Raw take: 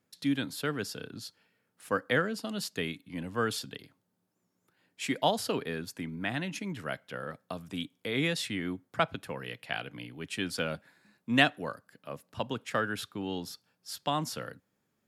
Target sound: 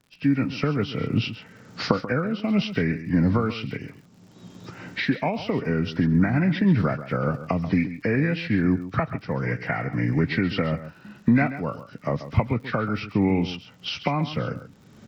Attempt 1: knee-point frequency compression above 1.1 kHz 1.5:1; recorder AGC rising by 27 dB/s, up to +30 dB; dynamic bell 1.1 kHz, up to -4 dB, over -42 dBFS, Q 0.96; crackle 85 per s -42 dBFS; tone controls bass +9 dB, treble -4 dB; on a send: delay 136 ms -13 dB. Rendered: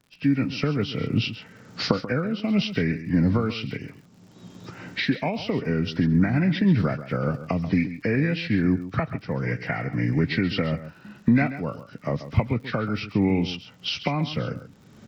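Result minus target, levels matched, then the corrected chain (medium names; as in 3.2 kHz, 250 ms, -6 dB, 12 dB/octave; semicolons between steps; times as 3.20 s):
4 kHz band +3.0 dB
knee-point frequency compression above 1.1 kHz 1.5:1; recorder AGC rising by 27 dB/s, up to +30 dB; dynamic bell 4.2 kHz, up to -4 dB, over -42 dBFS, Q 0.96; crackle 85 per s -42 dBFS; tone controls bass +9 dB, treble -4 dB; on a send: delay 136 ms -13 dB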